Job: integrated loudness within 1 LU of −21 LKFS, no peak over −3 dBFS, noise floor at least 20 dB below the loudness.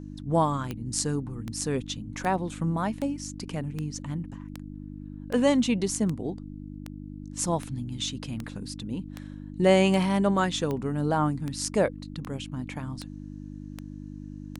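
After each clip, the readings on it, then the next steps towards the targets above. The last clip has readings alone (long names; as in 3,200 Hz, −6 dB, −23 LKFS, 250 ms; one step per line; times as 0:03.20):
number of clicks 19; mains hum 50 Hz; hum harmonics up to 300 Hz; level of the hum −37 dBFS; integrated loudness −28.0 LKFS; sample peak −7.5 dBFS; target loudness −21.0 LKFS
→ click removal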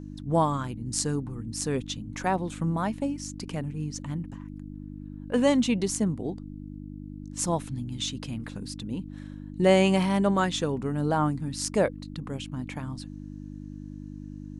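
number of clicks 0; mains hum 50 Hz; hum harmonics up to 300 Hz; level of the hum −37 dBFS
→ hum removal 50 Hz, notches 6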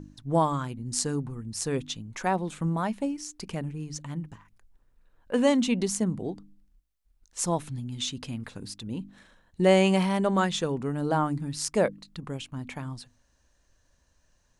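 mains hum none found; integrated loudness −28.5 LKFS; sample peak −8.5 dBFS; target loudness −21.0 LKFS
→ level +7.5 dB
brickwall limiter −3 dBFS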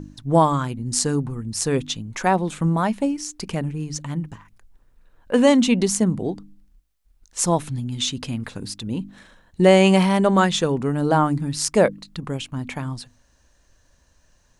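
integrated loudness −21.5 LKFS; sample peak −3.0 dBFS; background noise floor −61 dBFS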